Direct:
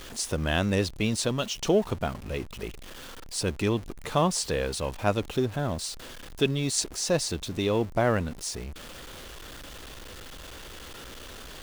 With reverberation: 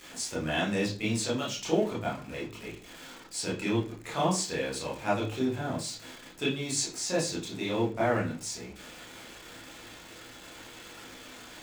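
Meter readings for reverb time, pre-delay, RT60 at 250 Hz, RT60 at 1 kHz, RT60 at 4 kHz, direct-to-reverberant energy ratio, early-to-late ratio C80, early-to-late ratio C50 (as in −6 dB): 0.40 s, 23 ms, 0.45 s, 0.35 s, 0.40 s, −6.0 dB, 14.0 dB, 8.0 dB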